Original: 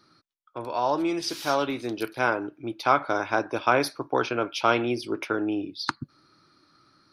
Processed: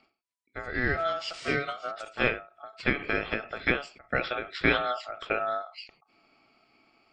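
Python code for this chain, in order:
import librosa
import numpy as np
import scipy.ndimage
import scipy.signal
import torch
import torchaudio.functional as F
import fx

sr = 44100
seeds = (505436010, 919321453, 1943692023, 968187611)

y = fx.freq_compress(x, sr, knee_hz=2400.0, ratio=1.5)
y = fx.dynamic_eq(y, sr, hz=1900.0, q=1.4, threshold_db=-38.0, ratio=4.0, max_db=5)
y = y * np.sin(2.0 * np.pi * 990.0 * np.arange(len(y)) / sr)
y = fx.notch_comb(y, sr, f0_hz=840.0, at=(1.4, 1.93))
y = fx.end_taper(y, sr, db_per_s=150.0)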